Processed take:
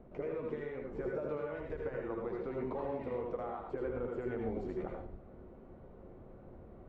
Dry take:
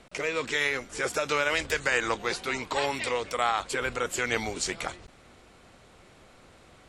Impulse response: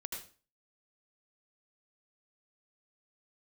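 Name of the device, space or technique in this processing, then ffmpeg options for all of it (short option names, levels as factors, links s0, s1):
television next door: -filter_complex "[0:a]acompressor=threshold=0.02:ratio=4,lowpass=550[s0];[1:a]atrim=start_sample=2205[s1];[s0][s1]afir=irnorm=-1:irlink=0,volume=1.88"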